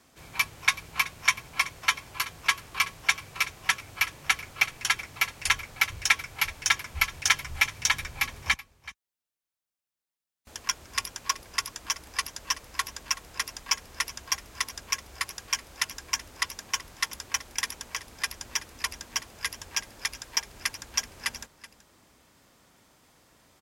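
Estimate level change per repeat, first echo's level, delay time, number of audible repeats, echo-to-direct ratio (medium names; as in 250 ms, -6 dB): no regular repeats, -17.5 dB, 378 ms, 1, -17.5 dB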